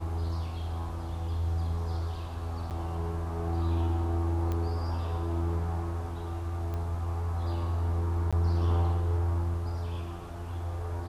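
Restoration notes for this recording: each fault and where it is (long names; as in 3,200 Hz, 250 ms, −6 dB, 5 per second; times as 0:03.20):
0:02.70–0:02.71: drop-out 8.5 ms
0:04.52: click −21 dBFS
0:06.74: click −25 dBFS
0:08.31–0:08.33: drop-out 16 ms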